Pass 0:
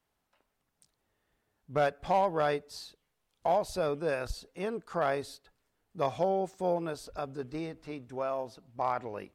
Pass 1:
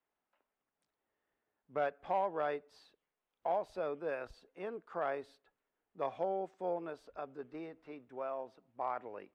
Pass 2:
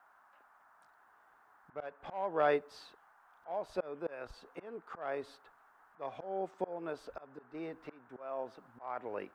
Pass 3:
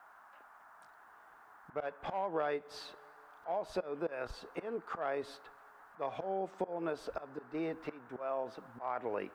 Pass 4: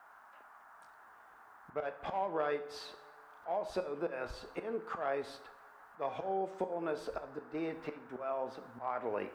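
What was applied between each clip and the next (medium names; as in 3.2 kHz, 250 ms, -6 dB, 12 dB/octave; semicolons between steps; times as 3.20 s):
three-band isolator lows -14 dB, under 230 Hz, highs -18 dB, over 3.1 kHz; band-stop 4.2 kHz, Q 26; trim -6.5 dB
slow attack 463 ms; band noise 690–1600 Hz -74 dBFS; trim +9 dB
two-slope reverb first 0.26 s, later 2.5 s, from -20 dB, DRR 17.5 dB; compression 6:1, threshold -38 dBFS, peak gain reduction 12.5 dB; trim +6 dB
plate-style reverb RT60 0.68 s, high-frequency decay 0.9×, DRR 8 dB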